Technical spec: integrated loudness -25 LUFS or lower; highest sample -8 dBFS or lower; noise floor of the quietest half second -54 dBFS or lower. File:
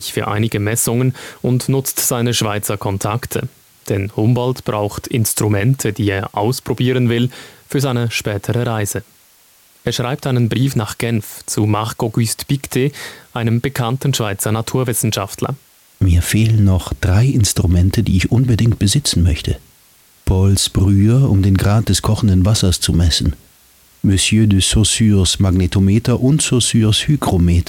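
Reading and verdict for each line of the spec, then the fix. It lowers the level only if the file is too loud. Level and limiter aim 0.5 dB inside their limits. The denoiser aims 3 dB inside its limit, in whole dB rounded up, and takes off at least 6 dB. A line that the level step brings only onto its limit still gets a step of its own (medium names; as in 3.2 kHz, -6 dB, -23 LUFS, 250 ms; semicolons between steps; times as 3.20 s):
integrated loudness -16.0 LUFS: fail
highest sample -5.0 dBFS: fail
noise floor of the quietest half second -50 dBFS: fail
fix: trim -9.5 dB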